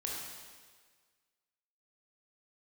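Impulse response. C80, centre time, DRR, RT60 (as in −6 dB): 2.0 dB, 89 ms, −3.0 dB, 1.6 s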